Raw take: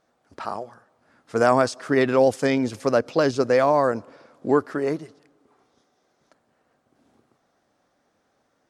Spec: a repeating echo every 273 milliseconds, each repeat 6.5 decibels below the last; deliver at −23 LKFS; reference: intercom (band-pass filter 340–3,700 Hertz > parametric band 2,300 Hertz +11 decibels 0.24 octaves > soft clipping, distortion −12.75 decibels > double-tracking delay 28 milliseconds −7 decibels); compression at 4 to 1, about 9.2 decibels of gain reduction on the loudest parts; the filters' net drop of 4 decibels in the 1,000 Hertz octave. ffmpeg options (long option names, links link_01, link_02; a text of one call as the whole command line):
ffmpeg -i in.wav -filter_complex "[0:a]equalizer=frequency=1000:width_type=o:gain=-5.5,acompressor=threshold=-26dB:ratio=4,highpass=340,lowpass=3700,equalizer=frequency=2300:width_type=o:width=0.24:gain=11,aecho=1:1:273|546|819|1092|1365|1638:0.473|0.222|0.105|0.0491|0.0231|0.0109,asoftclip=threshold=-26.5dB,asplit=2[link_01][link_02];[link_02]adelay=28,volume=-7dB[link_03];[link_01][link_03]amix=inputs=2:normalize=0,volume=11dB" out.wav